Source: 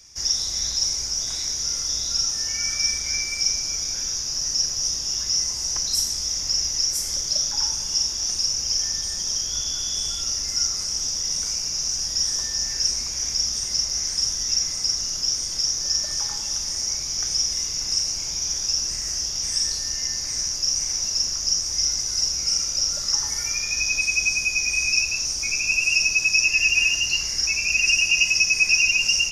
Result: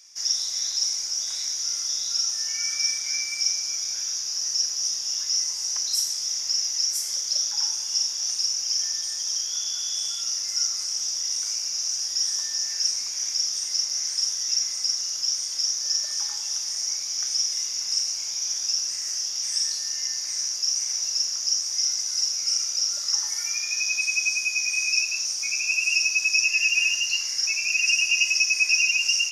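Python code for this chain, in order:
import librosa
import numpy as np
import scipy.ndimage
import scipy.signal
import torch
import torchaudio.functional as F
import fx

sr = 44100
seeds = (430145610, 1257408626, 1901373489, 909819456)

y = fx.highpass(x, sr, hz=1400.0, slope=6)
y = y * 10.0 ** (-1.5 / 20.0)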